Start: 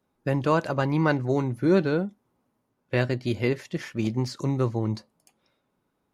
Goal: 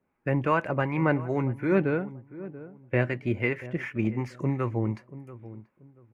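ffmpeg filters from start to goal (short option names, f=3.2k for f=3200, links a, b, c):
-filter_complex "[0:a]highshelf=f=3.1k:t=q:w=3:g=-10.5,acrossover=split=760[a][b];[a]aeval=exprs='val(0)*(1-0.5/2+0.5/2*cos(2*PI*2.7*n/s))':c=same[c];[b]aeval=exprs='val(0)*(1-0.5/2-0.5/2*cos(2*PI*2.7*n/s))':c=same[d];[c][d]amix=inputs=2:normalize=0,asplit=2[e][f];[f]adelay=684,lowpass=f=820:p=1,volume=-15dB,asplit=2[g][h];[h]adelay=684,lowpass=f=820:p=1,volume=0.29,asplit=2[i][j];[j]adelay=684,lowpass=f=820:p=1,volume=0.29[k];[e][g][i][k]amix=inputs=4:normalize=0"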